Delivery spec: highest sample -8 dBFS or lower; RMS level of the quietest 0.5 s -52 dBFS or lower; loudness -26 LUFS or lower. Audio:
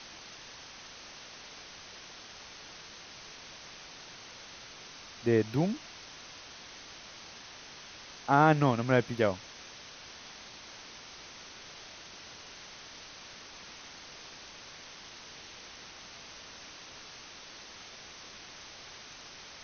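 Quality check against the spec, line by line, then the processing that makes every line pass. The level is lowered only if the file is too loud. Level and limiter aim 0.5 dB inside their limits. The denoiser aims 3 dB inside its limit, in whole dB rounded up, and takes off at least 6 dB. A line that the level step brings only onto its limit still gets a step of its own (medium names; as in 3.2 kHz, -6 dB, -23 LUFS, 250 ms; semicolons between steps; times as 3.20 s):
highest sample -9.5 dBFS: pass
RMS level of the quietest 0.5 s -49 dBFS: fail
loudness -37.0 LUFS: pass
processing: noise reduction 6 dB, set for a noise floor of -49 dBFS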